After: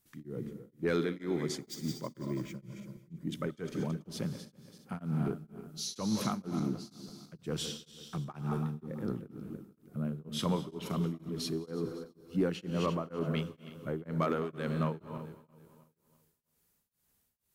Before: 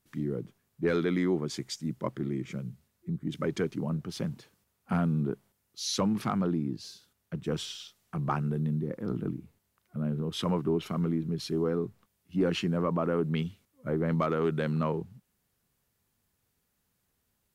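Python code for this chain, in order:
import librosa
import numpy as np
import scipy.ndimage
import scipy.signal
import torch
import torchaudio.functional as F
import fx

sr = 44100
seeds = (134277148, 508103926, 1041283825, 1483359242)

y = fx.reverse_delay_fb(x, sr, ms=165, feedback_pct=57, wet_db=-11.0)
y = fx.high_shelf(y, sr, hz=5500.0, db=8.0)
y = fx.rev_gated(y, sr, seeds[0], gate_ms=270, shape='rising', drr_db=11.5)
y = fx.resample_bad(y, sr, factor=2, down='none', up='hold', at=(1.61, 2.56))
y = y * np.abs(np.cos(np.pi * 2.1 * np.arange(len(y)) / sr))
y = y * librosa.db_to_amplitude(-2.5)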